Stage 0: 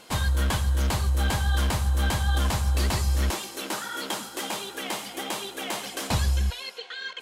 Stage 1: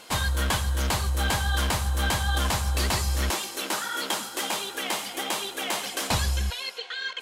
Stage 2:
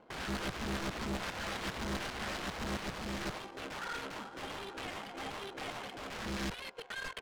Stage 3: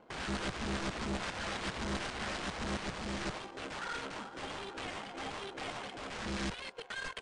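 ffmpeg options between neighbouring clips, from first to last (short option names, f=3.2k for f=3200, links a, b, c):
-af "lowshelf=f=410:g=-6.5,volume=3.5dB"
-af "aeval=exprs='(mod(17.8*val(0)+1,2)-1)/17.8':c=same,adynamicsmooth=sensitivity=5.5:basefreq=550,volume=-5dB"
-af "volume=1dB" -ar 22050 -c:a libmp3lame -b:a 64k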